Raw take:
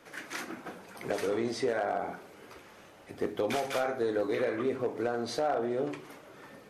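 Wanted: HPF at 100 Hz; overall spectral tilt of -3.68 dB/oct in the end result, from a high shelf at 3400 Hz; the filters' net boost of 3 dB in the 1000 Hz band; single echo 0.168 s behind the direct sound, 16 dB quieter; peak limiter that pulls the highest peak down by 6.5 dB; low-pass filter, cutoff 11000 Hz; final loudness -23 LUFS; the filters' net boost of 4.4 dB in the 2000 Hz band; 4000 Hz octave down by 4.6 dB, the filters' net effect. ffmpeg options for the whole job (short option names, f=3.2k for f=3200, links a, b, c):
-af "highpass=100,lowpass=11k,equalizer=f=1k:t=o:g=4,equalizer=f=2k:t=o:g=6.5,highshelf=f=3.4k:g=-4.5,equalizer=f=4k:t=o:g=-5,alimiter=limit=-22.5dB:level=0:latency=1,aecho=1:1:168:0.158,volume=10.5dB"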